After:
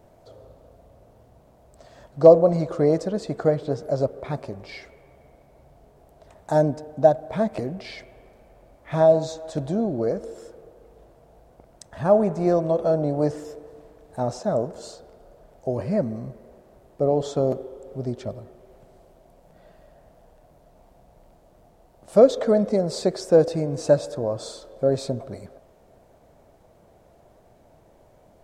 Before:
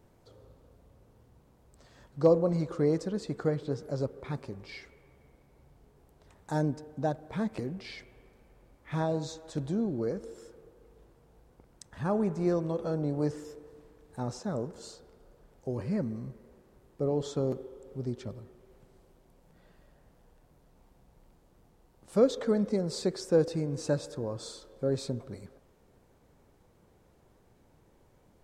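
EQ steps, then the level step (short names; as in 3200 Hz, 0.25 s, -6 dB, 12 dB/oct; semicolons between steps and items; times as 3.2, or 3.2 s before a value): bell 650 Hz +14 dB 0.45 oct; +5.0 dB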